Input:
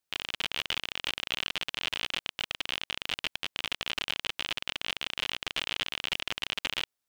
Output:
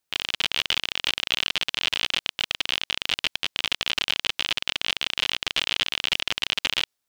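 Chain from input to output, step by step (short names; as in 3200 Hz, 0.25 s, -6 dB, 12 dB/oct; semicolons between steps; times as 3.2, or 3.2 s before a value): dynamic EQ 4600 Hz, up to +5 dB, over -43 dBFS, Q 0.78; gain +4.5 dB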